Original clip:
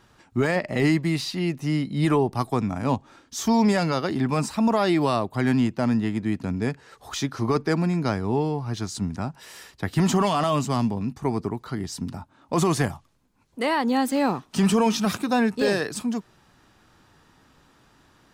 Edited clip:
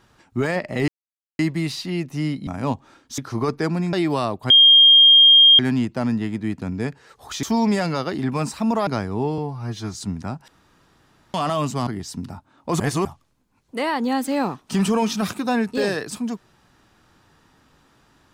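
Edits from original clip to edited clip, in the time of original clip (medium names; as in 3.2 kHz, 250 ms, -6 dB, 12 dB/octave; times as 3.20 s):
0.88 s: insert silence 0.51 s
1.96–2.69 s: delete
3.40–4.84 s: swap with 7.25–8.00 s
5.41 s: add tone 3.22 kHz -7.5 dBFS 1.09 s
8.51–8.89 s: stretch 1.5×
9.42–10.28 s: room tone
10.81–11.71 s: delete
12.64–12.89 s: reverse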